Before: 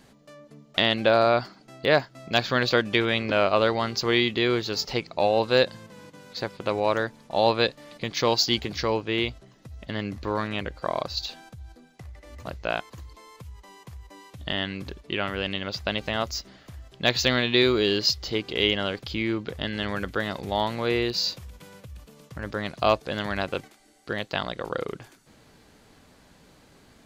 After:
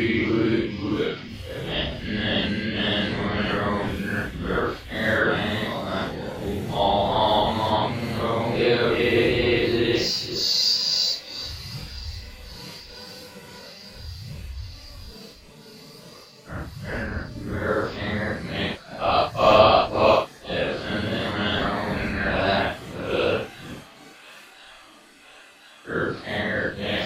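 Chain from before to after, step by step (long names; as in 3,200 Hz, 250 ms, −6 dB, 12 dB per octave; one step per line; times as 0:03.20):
reversed piece by piece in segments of 67 ms
pitch vibrato 7.3 Hz 31 cents
on a send: delay with a high-pass on its return 194 ms, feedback 76%, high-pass 1,500 Hz, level −19.5 dB
on the sum: extreme stretch with random phases 5.4×, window 0.05 s, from 0:19.25
level +4.5 dB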